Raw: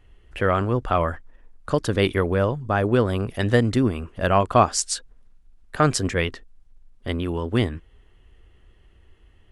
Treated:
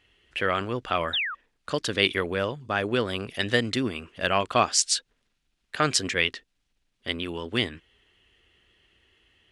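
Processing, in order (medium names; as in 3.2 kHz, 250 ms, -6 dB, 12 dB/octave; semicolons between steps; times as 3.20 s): painted sound fall, 1.13–1.35 s, 1.1–3.9 kHz -31 dBFS; frequency weighting D; trim -5.5 dB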